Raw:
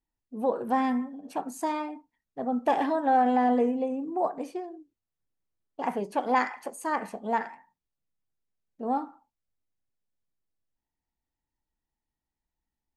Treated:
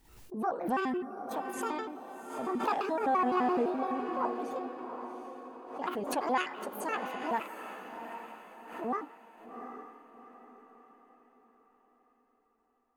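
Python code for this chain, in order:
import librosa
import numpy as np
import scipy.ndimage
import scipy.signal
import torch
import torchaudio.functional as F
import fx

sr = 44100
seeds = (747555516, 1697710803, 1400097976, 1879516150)

y = fx.pitch_trill(x, sr, semitones=6.5, every_ms=85)
y = fx.echo_diffused(y, sr, ms=758, feedback_pct=42, wet_db=-8.0)
y = fx.pre_swell(y, sr, db_per_s=78.0)
y = y * 10.0 ** (-5.5 / 20.0)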